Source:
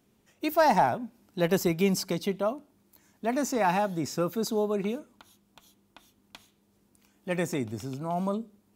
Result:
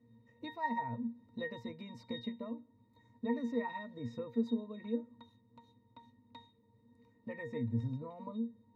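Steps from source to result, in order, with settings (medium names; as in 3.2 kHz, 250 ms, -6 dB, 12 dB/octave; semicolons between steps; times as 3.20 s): dynamic bell 2.4 kHz, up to +6 dB, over -47 dBFS, Q 1.2; compression 3:1, threshold -38 dBFS, peak gain reduction 15.5 dB; pitch-class resonator A#, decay 0.2 s; trim +13.5 dB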